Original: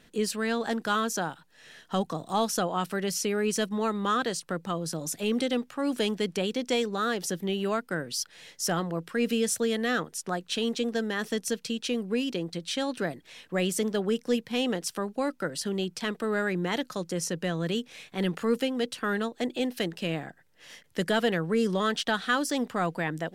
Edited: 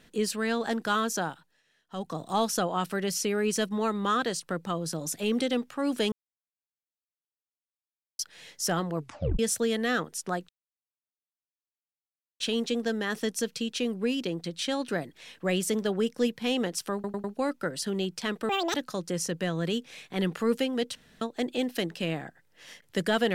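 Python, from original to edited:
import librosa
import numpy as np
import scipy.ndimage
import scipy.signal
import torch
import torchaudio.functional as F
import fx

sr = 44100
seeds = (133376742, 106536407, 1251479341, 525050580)

y = fx.edit(x, sr, fx.fade_down_up(start_s=1.29, length_s=0.92, db=-19.5, fade_s=0.34),
    fx.silence(start_s=6.12, length_s=2.07),
    fx.tape_stop(start_s=8.97, length_s=0.42),
    fx.insert_silence(at_s=10.49, length_s=1.91),
    fx.stutter(start_s=15.03, slice_s=0.1, count=4),
    fx.speed_span(start_s=16.28, length_s=0.48, speed=1.9),
    fx.room_tone_fill(start_s=18.97, length_s=0.26), tone=tone)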